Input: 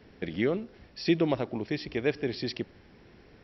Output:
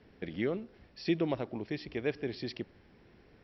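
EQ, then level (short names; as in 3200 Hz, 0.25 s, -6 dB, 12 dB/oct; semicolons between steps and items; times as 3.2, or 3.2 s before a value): air absorption 59 m; -5.0 dB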